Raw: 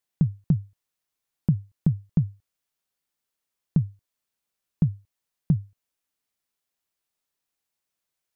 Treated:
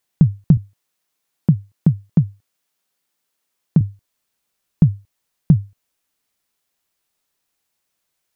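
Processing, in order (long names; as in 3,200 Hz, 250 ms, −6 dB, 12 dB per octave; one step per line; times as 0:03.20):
0:00.57–0:03.81: high-pass filter 130 Hz
level +9 dB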